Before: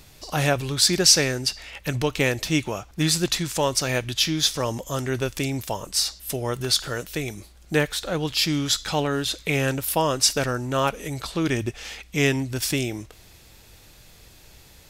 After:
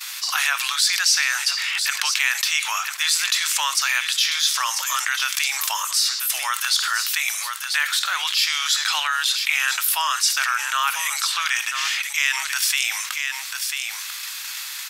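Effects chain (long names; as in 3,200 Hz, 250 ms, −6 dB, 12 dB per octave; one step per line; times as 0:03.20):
downward expander −40 dBFS
Butterworth high-pass 1,100 Hz 36 dB per octave
single-tap delay 993 ms −18 dB
envelope flattener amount 70%
level −4 dB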